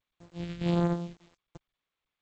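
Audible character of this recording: a buzz of ramps at a fixed pitch in blocks of 256 samples; phasing stages 2, 1.4 Hz, lowest notch 800–2400 Hz; a quantiser's noise floor 10-bit, dither none; G.722

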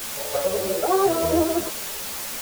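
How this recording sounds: tremolo saw up 2.8 Hz, depth 50%; a quantiser's noise floor 6-bit, dither triangular; a shimmering, thickened sound

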